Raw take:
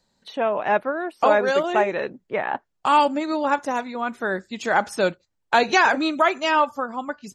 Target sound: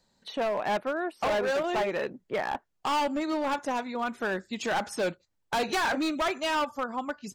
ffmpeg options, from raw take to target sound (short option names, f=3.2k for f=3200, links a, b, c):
-filter_complex "[0:a]asplit=2[a][b];[b]acompressor=threshold=-31dB:ratio=8,volume=-3dB[c];[a][c]amix=inputs=2:normalize=0,asoftclip=type=hard:threshold=-18.5dB,volume=-5.5dB"